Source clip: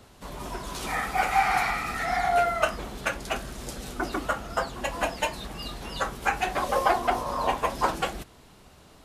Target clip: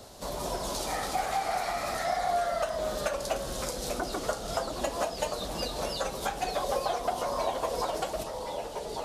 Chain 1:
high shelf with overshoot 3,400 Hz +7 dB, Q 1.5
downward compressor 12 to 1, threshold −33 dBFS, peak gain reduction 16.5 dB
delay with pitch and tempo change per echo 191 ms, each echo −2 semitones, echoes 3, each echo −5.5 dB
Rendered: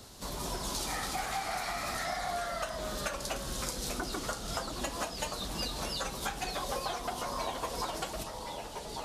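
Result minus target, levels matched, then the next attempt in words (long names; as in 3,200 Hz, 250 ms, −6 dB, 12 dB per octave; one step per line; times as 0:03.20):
500 Hz band −4.5 dB
high shelf with overshoot 3,400 Hz +7 dB, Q 1.5
downward compressor 12 to 1, threshold −33 dBFS, peak gain reduction 16.5 dB
parametric band 610 Hz +10 dB 0.99 octaves
delay with pitch and tempo change per echo 191 ms, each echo −2 semitones, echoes 3, each echo −5.5 dB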